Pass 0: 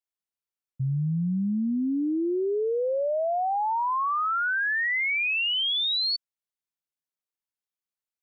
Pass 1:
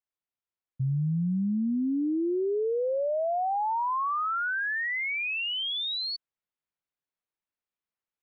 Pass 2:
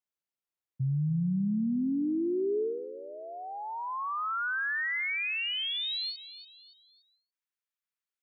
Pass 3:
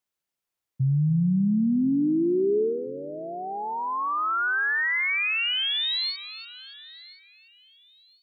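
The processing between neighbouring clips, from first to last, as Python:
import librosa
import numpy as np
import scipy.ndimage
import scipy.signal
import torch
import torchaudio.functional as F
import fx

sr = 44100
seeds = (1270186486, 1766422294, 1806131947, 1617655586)

y1 = scipy.signal.sosfilt(scipy.signal.butter(2, 2800.0, 'lowpass', fs=sr, output='sos'), x)
y1 = fx.dynamic_eq(y1, sr, hz=570.0, q=0.89, threshold_db=-41.0, ratio=4.0, max_db=-5)
y1 = fx.rider(y1, sr, range_db=10, speed_s=0.5)
y2 = fx.filter_sweep_highpass(y1, sr, from_hz=110.0, to_hz=1400.0, start_s=2.33, end_s=2.91, q=0.98)
y2 = fx.echo_feedback(y2, sr, ms=287, feedback_pct=40, wet_db=-14)
y2 = fx.end_taper(y2, sr, db_per_s=140.0)
y2 = y2 * librosa.db_to_amplitude(-2.5)
y3 = fx.echo_feedback(y2, sr, ms=1030, feedback_pct=28, wet_db=-20)
y3 = y3 * librosa.db_to_amplitude(6.5)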